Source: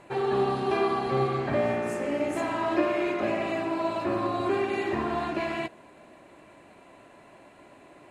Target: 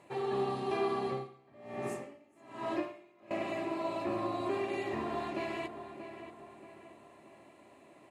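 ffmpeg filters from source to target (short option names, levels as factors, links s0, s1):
-filter_complex "[0:a]highpass=81,highshelf=f=7100:g=4.5,bandreject=f=1500:w=6.5,asplit=2[s0][s1];[s1]adelay=631,lowpass=f=2900:p=1,volume=0.316,asplit=2[s2][s3];[s3]adelay=631,lowpass=f=2900:p=1,volume=0.47,asplit=2[s4][s5];[s5]adelay=631,lowpass=f=2900:p=1,volume=0.47,asplit=2[s6][s7];[s7]adelay=631,lowpass=f=2900:p=1,volume=0.47,asplit=2[s8][s9];[s9]adelay=631,lowpass=f=2900:p=1,volume=0.47[s10];[s0][s2][s4][s6][s8][s10]amix=inputs=6:normalize=0,asettb=1/sr,asplit=3[s11][s12][s13];[s11]atrim=end=1.054[s14];[s12]atrim=start=1.05:end=3.31,asetpts=PTS-STARTPTS,afade=t=in:d=0.004:c=qsin,afade=t=out:st=2.256:d=0.004:c=qsin,aeval=exprs='val(0)*pow(10,-28*(0.5-0.5*cos(2*PI*1.2*n/s))/20)':c=same[s15];[s13]atrim=start=3.306[s16];[s14][s15]acrossfade=d=0.004:c1=hsin:c2=qsin[s17];[s17][s16]acrossfade=d=0.004:c1=qsin:c2=hsin,volume=0.422"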